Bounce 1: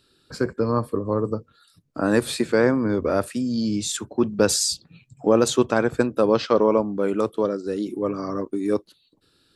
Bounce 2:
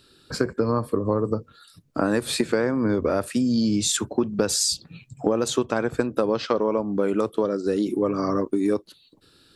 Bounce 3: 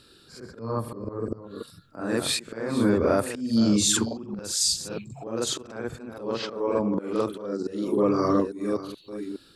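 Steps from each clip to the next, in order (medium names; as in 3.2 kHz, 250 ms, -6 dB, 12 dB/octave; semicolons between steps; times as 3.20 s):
compression 10:1, threshold -24 dBFS, peak gain reduction 13.5 dB; trim +6 dB
chunks repeated in reverse 426 ms, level -13 dB; slow attack 319 ms; reverse echo 44 ms -4.5 dB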